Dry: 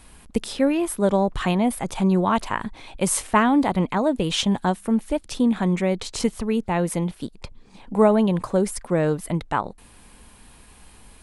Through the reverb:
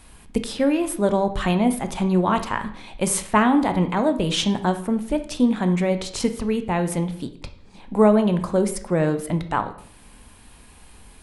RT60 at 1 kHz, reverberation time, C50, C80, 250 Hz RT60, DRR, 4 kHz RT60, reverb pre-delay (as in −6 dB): 0.55 s, 0.55 s, 12.0 dB, 15.5 dB, 0.60 s, 8.0 dB, 0.50 s, 14 ms